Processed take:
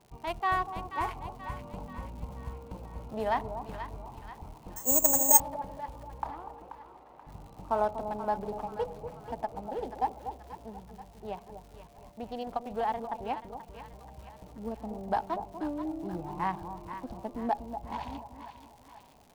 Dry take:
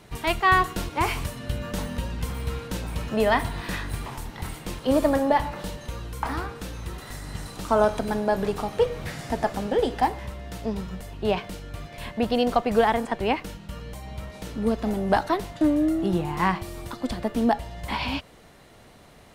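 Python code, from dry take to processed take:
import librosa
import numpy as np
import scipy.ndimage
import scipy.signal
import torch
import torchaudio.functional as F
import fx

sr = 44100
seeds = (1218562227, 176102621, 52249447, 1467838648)

y = fx.wiener(x, sr, points=25)
y = fx.peak_eq(y, sr, hz=840.0, db=10.0, octaves=0.74)
y = fx.rider(y, sr, range_db=3, speed_s=2.0)
y = fx.dmg_crackle(y, sr, seeds[0], per_s=180.0, level_db=-32.0)
y = fx.bandpass_edges(y, sr, low_hz=380.0, high_hz=2300.0, at=(6.3, 7.27))
y = fx.echo_split(y, sr, split_hz=970.0, low_ms=242, high_ms=482, feedback_pct=52, wet_db=-9)
y = fx.resample_bad(y, sr, factor=6, down='none', up='zero_stuff', at=(4.76, 5.4))
y = fx.end_taper(y, sr, db_per_s=490.0)
y = F.gain(torch.from_numpy(y), -14.5).numpy()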